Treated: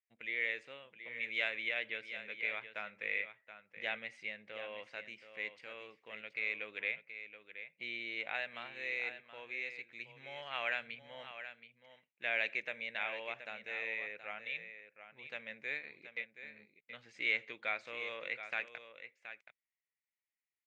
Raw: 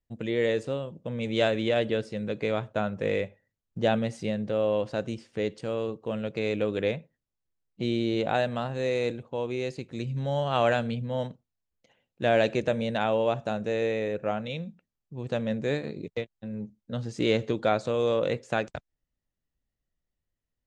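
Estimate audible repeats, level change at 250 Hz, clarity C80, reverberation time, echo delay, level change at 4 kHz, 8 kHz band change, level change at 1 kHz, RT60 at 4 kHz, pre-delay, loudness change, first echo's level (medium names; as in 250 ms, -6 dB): 1, -28.0 dB, no reverb, no reverb, 725 ms, -8.0 dB, no reading, -16.0 dB, no reverb, no reverb, -10.5 dB, -11.0 dB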